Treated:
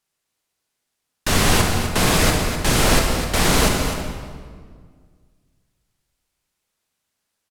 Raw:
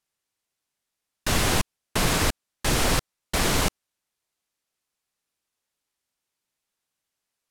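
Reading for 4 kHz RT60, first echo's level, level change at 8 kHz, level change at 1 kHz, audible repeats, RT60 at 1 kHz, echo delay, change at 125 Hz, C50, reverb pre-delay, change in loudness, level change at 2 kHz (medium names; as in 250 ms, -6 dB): 1.3 s, -9.5 dB, +6.0 dB, +7.0 dB, 1, 1.7 s, 252 ms, +7.5 dB, 2.0 dB, 30 ms, +6.5 dB, +6.5 dB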